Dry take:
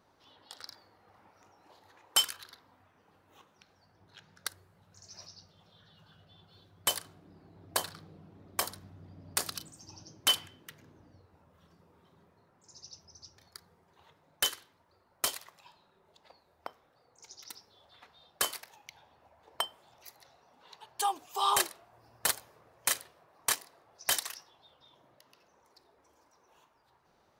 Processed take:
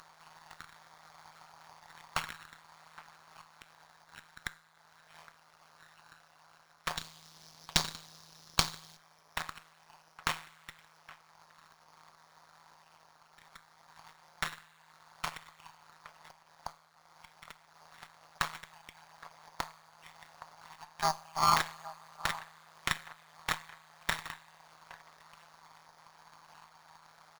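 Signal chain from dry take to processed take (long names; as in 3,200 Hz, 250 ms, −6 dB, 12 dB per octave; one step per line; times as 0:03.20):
bad sample-rate conversion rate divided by 8×, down filtered, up hold
upward compression, threshold −48 dBFS
high-pass filter 840 Hz 24 dB per octave
slap from a distant wall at 140 metres, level −15 dB
coupled-rooms reverb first 0.41 s, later 3 s, from −15 dB, DRR 13.5 dB
amplitude modulation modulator 160 Hz, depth 90%
0:06.97–0:08.97: high shelf with overshoot 2,700 Hz +10 dB, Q 1.5
windowed peak hold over 3 samples
level +7.5 dB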